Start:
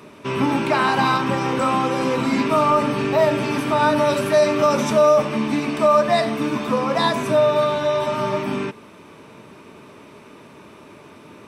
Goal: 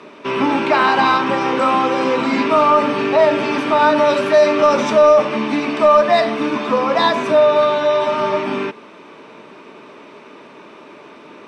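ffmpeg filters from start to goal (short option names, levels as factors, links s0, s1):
-af "highpass=270,lowpass=4700,acontrast=31"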